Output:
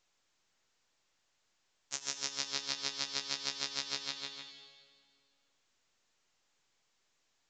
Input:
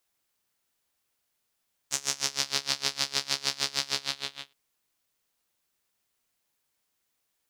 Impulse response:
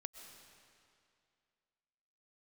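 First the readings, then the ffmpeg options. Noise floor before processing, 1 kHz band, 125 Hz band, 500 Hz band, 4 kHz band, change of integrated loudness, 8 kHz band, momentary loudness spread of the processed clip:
-78 dBFS, -8.0 dB, -10.5 dB, -7.5 dB, -7.5 dB, -7.5 dB, -8.0 dB, 9 LU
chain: -filter_complex "[0:a]lowshelf=f=130:g=-7.5[a];[1:a]atrim=start_sample=2205,asetrate=61740,aresample=44100[b];[a][b]afir=irnorm=-1:irlink=0" -ar 16000 -c:a pcm_mulaw

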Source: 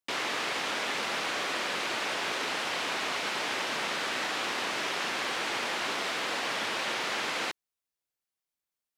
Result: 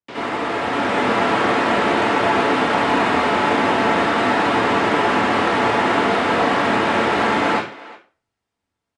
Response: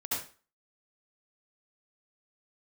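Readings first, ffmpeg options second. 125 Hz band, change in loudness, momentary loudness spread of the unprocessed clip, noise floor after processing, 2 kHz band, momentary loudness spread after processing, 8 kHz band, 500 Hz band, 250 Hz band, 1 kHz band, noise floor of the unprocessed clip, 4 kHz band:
+22.0 dB, +13.0 dB, 0 LU, -81 dBFS, +10.5 dB, 4 LU, 0.0 dB, +18.0 dB, +22.0 dB, +16.5 dB, under -85 dBFS, +4.5 dB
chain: -filter_complex "[0:a]aemphasis=mode=reproduction:type=riaa,asplit=2[a][b];[b]adelay=360,highpass=300,lowpass=3.4k,asoftclip=type=hard:threshold=-29dB,volume=-19dB[c];[a][c]amix=inputs=2:normalize=0[d];[1:a]atrim=start_sample=2205[e];[d][e]afir=irnorm=-1:irlink=0,acrossover=split=4800[f][g];[g]acompressor=threshold=-54dB:ratio=4:attack=1:release=60[h];[f][h]amix=inputs=2:normalize=0,acrossover=split=180|1800[i][j][k];[k]asoftclip=type=tanh:threshold=-36.5dB[l];[i][j][l]amix=inputs=3:normalize=0,aresample=22050,aresample=44100,highpass=f=110:p=1,dynaudnorm=f=320:g=5:m=6.5dB,volume=4.5dB"

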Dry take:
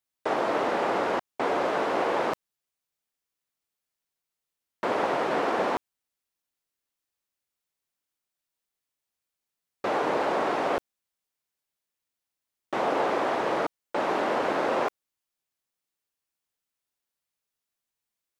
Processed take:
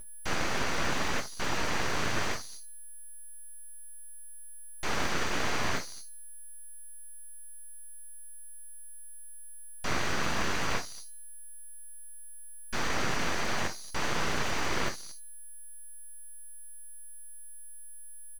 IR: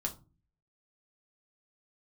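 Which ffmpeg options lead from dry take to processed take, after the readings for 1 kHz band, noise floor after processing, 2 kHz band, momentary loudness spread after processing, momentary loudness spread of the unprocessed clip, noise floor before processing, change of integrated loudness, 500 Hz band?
-8.0 dB, -43 dBFS, +0.5 dB, 16 LU, 5 LU, under -85 dBFS, -5.0 dB, -11.5 dB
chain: -filter_complex "[0:a]highpass=230,bandreject=f=314.3:t=h:w=4,bandreject=f=628.6:t=h:w=4,bandreject=f=942.9:t=h:w=4,bandreject=f=1.2572k:t=h:w=4,bandreject=f=1.5715k:t=h:w=4,bandreject=f=1.8858k:t=h:w=4,bandreject=f=2.2001k:t=h:w=4,bandreject=f=2.5144k:t=h:w=4,bandreject=f=2.8287k:t=h:w=4,bandreject=f=3.143k:t=h:w=4,bandreject=f=3.4573k:t=h:w=4,bandreject=f=3.7716k:t=h:w=4,bandreject=f=4.0859k:t=h:w=4,bandreject=f=4.4002k:t=h:w=4,bandreject=f=4.7145k:t=h:w=4,bandreject=f=5.0288k:t=h:w=4,bandreject=f=5.3431k:t=h:w=4,bandreject=f=5.6574k:t=h:w=4,bandreject=f=5.9717k:t=h:w=4,bandreject=f=6.286k:t=h:w=4,bandreject=f=6.6003k:t=h:w=4,bandreject=f=6.9146k:t=h:w=4,bandreject=f=7.2289k:t=h:w=4,bandreject=f=7.5432k:t=h:w=4,bandreject=f=7.8575k:t=h:w=4,bandreject=f=8.1718k:t=h:w=4,bandreject=f=8.4861k:t=h:w=4,bandreject=f=8.8004k:t=h:w=4,bandreject=f=9.1147k:t=h:w=4,bandreject=f=9.429k:t=h:w=4,bandreject=f=9.7433k:t=h:w=4,bandreject=f=10.0576k:t=h:w=4,bandreject=f=10.3719k:t=h:w=4,bandreject=f=10.6862k:t=h:w=4,bandreject=f=11.0005k:t=h:w=4,aeval=exprs='val(0)+0.0112*sin(2*PI*5300*n/s)':c=same,asplit=2[a][b];[b]adelay=230,highpass=300,lowpass=3.4k,asoftclip=type=hard:threshold=-23.5dB,volume=-21dB[c];[a][c]amix=inputs=2:normalize=0,acrossover=split=1500[d][e];[d]asoftclip=type=tanh:threshold=-25.5dB[f];[f][e]amix=inputs=2:normalize=0[g];[1:a]atrim=start_sample=2205,afade=t=out:st=0.14:d=0.01,atrim=end_sample=6615[h];[g][h]afir=irnorm=-1:irlink=0,aeval=exprs='abs(val(0))':c=same"

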